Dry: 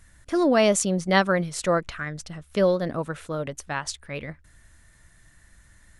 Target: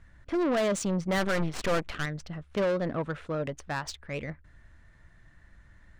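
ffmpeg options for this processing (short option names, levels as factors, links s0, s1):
-filter_complex "[0:a]asoftclip=type=tanh:threshold=0.0708,asettb=1/sr,asplit=3[s0][s1][s2];[s0]atrim=end=1.184[s3];[s1]atrim=start=1.18:end=2.06,asetpts=PTS-STARTPTS,afade=t=in:d=0.004:c=qsin,afade=t=out:st=0.876:d=0.004:c=qsin,aeval=exprs='0.0708*(cos(1*acos(clip(val(0)/0.0708,-1,1)))-cos(1*PI/2))+0.0251*(cos(4*acos(clip(val(0)/0.0708,-1,1)))-cos(4*PI/2))':c=same[s4];[s2]atrim=start=2.056[s5];[s3][s4]acrossfade=d=0.004:c1=hsin:c2=qsin[s6];[s6][s5]acrossfade=d=0.004:c1=qsin:c2=hsin,adynamicsmooth=sensitivity=4:basefreq=2900"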